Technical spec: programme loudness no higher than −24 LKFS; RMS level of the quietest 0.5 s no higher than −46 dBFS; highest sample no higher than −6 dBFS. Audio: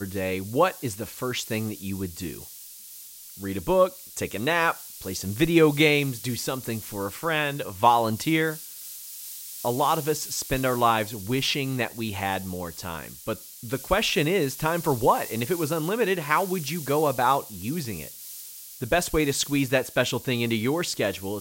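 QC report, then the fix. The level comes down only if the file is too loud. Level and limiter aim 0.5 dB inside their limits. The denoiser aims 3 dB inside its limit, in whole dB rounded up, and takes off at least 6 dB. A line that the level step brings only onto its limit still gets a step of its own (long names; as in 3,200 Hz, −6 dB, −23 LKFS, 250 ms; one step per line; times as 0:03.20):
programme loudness −25.5 LKFS: in spec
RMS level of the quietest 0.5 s −44 dBFS: out of spec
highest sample −4.5 dBFS: out of spec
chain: broadband denoise 6 dB, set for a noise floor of −44 dBFS
brickwall limiter −6.5 dBFS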